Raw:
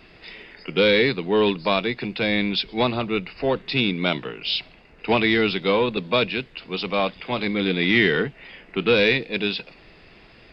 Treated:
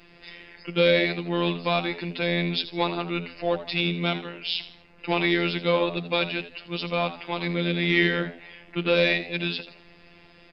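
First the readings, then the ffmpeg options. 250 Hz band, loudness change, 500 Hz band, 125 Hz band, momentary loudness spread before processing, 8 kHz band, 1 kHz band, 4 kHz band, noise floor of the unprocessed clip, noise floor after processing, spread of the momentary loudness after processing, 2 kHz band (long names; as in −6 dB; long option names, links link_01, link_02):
−3.5 dB, −3.5 dB, −4.0 dB, 0.0 dB, 11 LU, can't be measured, −3.0 dB, −3.5 dB, −50 dBFS, −53 dBFS, 13 LU, −3.5 dB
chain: -filter_complex "[0:a]afftfilt=real='hypot(re,im)*cos(PI*b)':imag='0':win_size=1024:overlap=0.75,asplit=4[link_01][link_02][link_03][link_04];[link_02]adelay=81,afreqshift=83,volume=-14dB[link_05];[link_03]adelay=162,afreqshift=166,volume=-23.4dB[link_06];[link_04]adelay=243,afreqshift=249,volume=-32.7dB[link_07];[link_01][link_05][link_06][link_07]amix=inputs=4:normalize=0"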